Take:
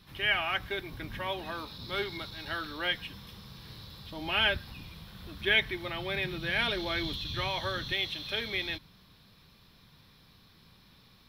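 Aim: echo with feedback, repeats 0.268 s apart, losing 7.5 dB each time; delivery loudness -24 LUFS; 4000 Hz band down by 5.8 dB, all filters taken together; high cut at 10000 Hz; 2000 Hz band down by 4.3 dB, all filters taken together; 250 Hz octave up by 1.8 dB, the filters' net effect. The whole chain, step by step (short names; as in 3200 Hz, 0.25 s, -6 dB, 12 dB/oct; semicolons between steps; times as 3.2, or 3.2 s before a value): LPF 10000 Hz; bell 250 Hz +3 dB; bell 2000 Hz -4 dB; bell 4000 Hz -6 dB; feedback echo 0.268 s, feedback 42%, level -7.5 dB; gain +10.5 dB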